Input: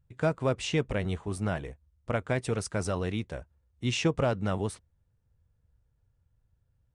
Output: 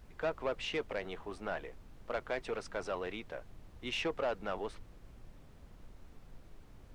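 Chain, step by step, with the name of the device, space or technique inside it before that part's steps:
aircraft cabin announcement (band-pass filter 450–3,400 Hz; soft clipping −25.5 dBFS, distortion −13 dB; brown noise bed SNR 10 dB)
level −1.5 dB

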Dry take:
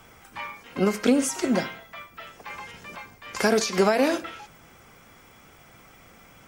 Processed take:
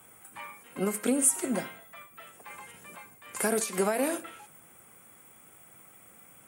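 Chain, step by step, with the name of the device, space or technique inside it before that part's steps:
budget condenser microphone (high-pass filter 110 Hz 12 dB per octave; high shelf with overshoot 7,100 Hz +10.5 dB, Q 3)
level −7 dB

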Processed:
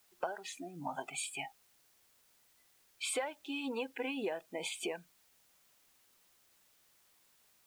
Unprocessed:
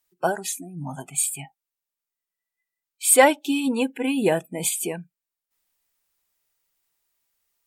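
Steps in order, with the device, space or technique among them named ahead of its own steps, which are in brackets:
baby monitor (band-pass filter 460–3,200 Hz; downward compressor 12 to 1, threshold −37 dBFS, peak gain reduction 26 dB; white noise bed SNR 26 dB)
level +2.5 dB

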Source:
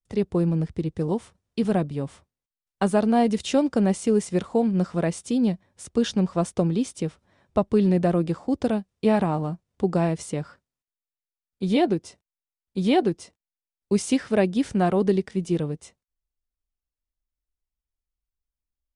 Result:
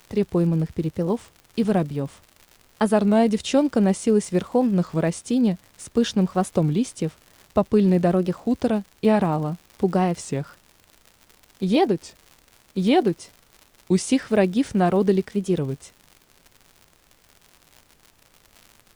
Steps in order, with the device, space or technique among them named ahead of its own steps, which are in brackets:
warped LP (wow of a warped record 33 1/3 rpm, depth 160 cents; surface crackle 120 per second −37 dBFS; pink noise bed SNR 37 dB)
level +2 dB

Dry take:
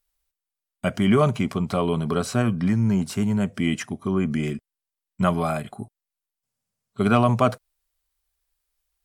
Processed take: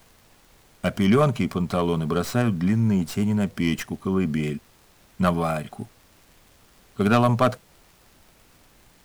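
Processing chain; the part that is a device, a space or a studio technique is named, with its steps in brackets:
record under a worn stylus (stylus tracing distortion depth 0.081 ms; surface crackle; pink noise bed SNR 31 dB)

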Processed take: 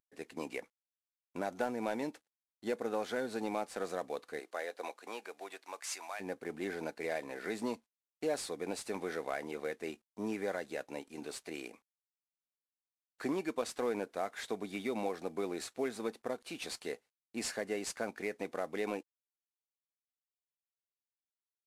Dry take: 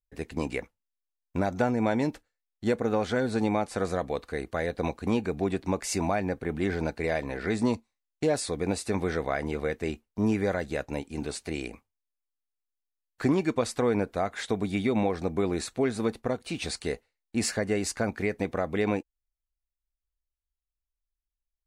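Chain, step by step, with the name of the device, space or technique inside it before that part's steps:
early wireless headset (high-pass filter 290 Hz 12 dB per octave; variable-slope delta modulation 64 kbit/s)
0:04.39–0:06.19: high-pass filter 390 Hz → 1,200 Hz 12 dB per octave
level −7.5 dB

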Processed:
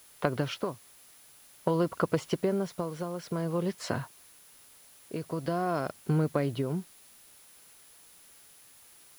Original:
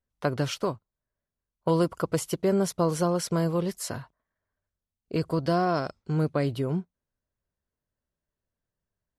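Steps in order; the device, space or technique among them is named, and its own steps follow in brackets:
medium wave at night (band-pass filter 110–3,700 Hz; downward compressor 4 to 1, threshold −29 dBFS, peak gain reduction 9 dB; amplitude tremolo 0.49 Hz, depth 64%; steady tone 10,000 Hz −64 dBFS; white noise bed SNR 24 dB)
level +5.5 dB

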